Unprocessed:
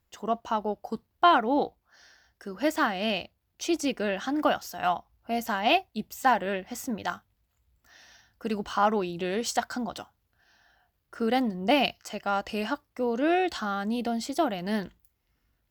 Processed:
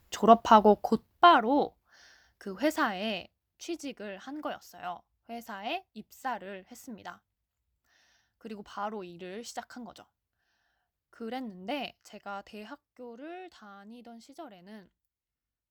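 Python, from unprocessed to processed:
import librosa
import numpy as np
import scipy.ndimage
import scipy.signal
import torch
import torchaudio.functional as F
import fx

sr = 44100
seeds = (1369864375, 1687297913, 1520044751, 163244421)

y = fx.gain(x, sr, db=fx.line((0.74, 9.5), (1.39, -1.0), (2.57, -1.0), (3.99, -12.0), (12.36, -12.0), (13.34, -19.5)))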